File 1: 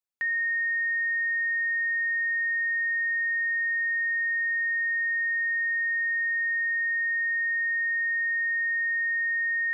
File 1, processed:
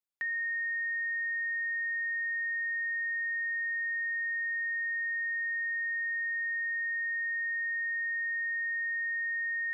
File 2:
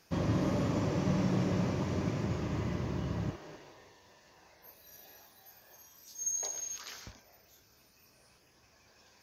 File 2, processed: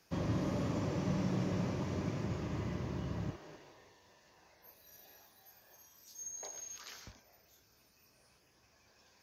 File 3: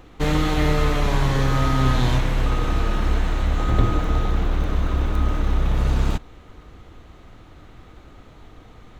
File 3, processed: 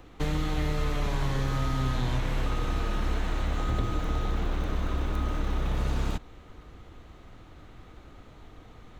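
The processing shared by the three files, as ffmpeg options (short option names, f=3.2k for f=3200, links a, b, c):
-filter_complex "[0:a]acrossover=split=180|2900[a][b][c];[a]acompressor=threshold=-21dB:ratio=4[d];[b]acompressor=threshold=-29dB:ratio=4[e];[c]acompressor=threshold=-41dB:ratio=4[f];[d][e][f]amix=inputs=3:normalize=0,volume=-4dB"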